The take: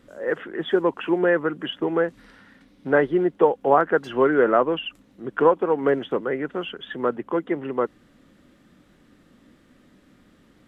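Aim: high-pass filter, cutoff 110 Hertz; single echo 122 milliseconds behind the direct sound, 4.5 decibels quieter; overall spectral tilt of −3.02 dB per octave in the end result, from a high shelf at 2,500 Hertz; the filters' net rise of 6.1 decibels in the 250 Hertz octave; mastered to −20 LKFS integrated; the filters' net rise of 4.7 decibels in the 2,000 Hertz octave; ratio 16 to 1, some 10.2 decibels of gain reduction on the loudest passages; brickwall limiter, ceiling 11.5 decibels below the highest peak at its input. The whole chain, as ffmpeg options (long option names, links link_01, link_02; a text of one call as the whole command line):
ffmpeg -i in.wav -af "highpass=110,equalizer=frequency=250:width_type=o:gain=9,equalizer=frequency=2000:width_type=o:gain=5,highshelf=frequency=2500:gain=3,acompressor=threshold=-19dB:ratio=16,alimiter=limit=-21.5dB:level=0:latency=1,aecho=1:1:122:0.596,volume=9.5dB" out.wav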